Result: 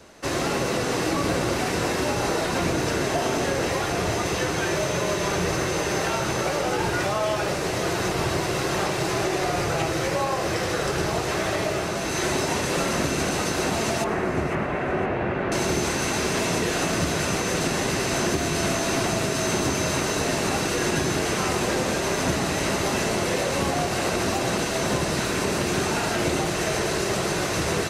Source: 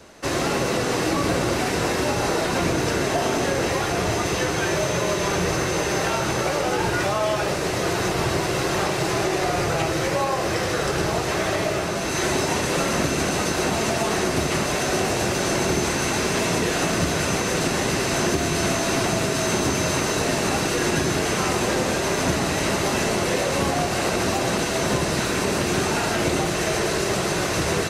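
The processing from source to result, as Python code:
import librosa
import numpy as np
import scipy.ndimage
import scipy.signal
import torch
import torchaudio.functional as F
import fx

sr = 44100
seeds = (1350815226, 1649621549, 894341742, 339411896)

p1 = fx.lowpass(x, sr, hz=2300.0, slope=24, at=(14.04, 15.52))
p2 = p1 + fx.echo_feedback(p1, sr, ms=509, feedback_pct=35, wet_db=-16.0, dry=0)
y = p2 * 10.0 ** (-2.0 / 20.0)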